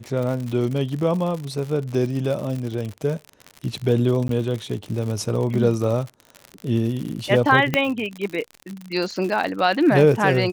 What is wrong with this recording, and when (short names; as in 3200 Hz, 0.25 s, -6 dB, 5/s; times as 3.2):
crackle 83/s -27 dBFS
4.28–4.29 gap
7.74 pop -6 dBFS